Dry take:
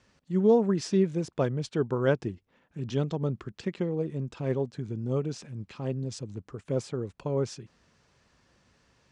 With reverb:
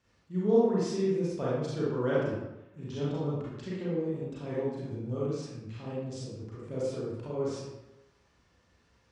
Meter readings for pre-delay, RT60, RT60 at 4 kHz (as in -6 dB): 31 ms, 0.95 s, 0.65 s